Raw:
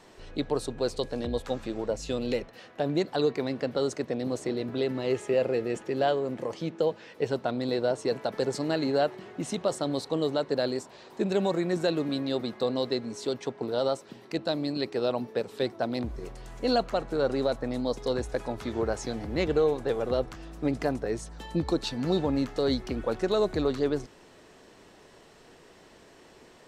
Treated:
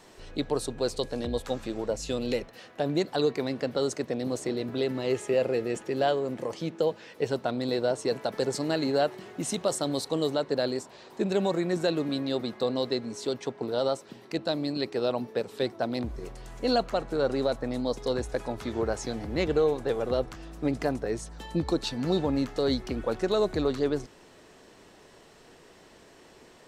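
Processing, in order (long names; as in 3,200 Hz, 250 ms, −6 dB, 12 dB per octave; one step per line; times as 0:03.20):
high-shelf EQ 6,400 Hz +7 dB, from 0:09.11 +12 dB, from 0:10.35 +2.5 dB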